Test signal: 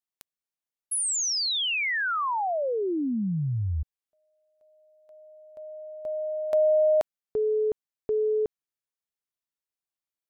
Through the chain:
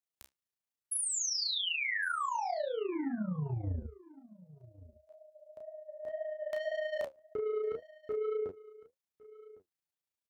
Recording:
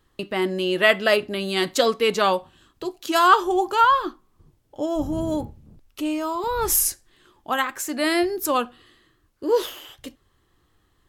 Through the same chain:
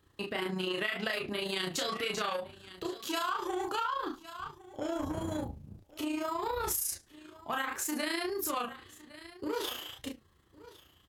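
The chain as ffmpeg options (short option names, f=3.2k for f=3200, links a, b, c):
-filter_complex "[0:a]flanger=delay=9.9:depth=5:regen=51:speed=1.9:shape=sinusoidal,lowshelf=f=170:g=5,acrossover=split=1000[a][b];[a]asoftclip=type=tanh:threshold=-31dB[c];[c][b]amix=inputs=2:normalize=0,highpass=53,asplit=2[d][e];[e]adelay=33,volume=-2dB[f];[d][f]amix=inputs=2:normalize=0,asplit=2[g][h];[h]aecho=0:1:1107:0.0708[i];[g][i]amix=inputs=2:normalize=0,tremolo=f=28:d=0.519,acompressor=threshold=-33dB:ratio=16:attack=20:release=81:knee=6:detection=rms,volume=2dB"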